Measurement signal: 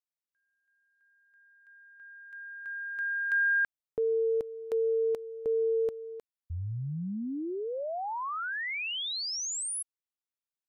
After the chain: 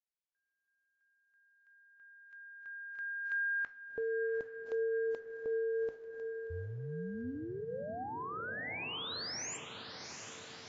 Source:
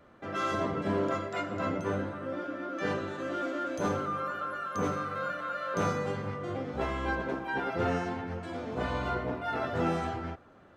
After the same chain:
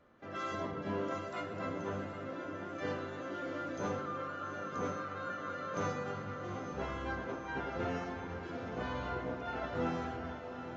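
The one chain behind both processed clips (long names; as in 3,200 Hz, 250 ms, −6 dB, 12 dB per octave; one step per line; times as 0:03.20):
tuned comb filter 250 Hz, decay 0.76 s, mix 60%
feedback delay with all-pass diffusion 760 ms, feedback 66%, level −9 dB
AAC 24 kbit/s 16,000 Hz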